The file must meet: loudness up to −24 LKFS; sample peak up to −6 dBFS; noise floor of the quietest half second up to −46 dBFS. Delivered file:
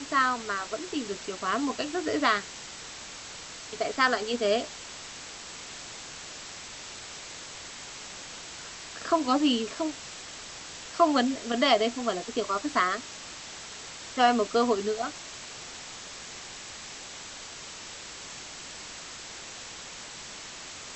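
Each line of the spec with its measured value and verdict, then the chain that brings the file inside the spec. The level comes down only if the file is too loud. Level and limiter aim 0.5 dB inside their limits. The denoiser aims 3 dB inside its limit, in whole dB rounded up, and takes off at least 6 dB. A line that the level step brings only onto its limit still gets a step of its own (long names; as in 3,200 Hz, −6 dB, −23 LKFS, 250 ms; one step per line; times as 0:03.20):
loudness −31.0 LKFS: in spec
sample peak −8.5 dBFS: in spec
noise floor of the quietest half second −43 dBFS: out of spec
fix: broadband denoise 6 dB, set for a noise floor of −43 dBFS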